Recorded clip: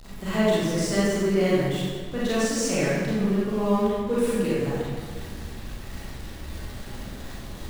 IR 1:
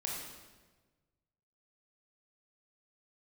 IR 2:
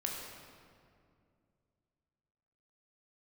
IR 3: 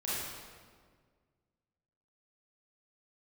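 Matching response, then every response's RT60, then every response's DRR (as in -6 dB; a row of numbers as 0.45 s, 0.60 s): 3; 1.3 s, 2.3 s, 1.8 s; -2.5 dB, -1.5 dB, -9.5 dB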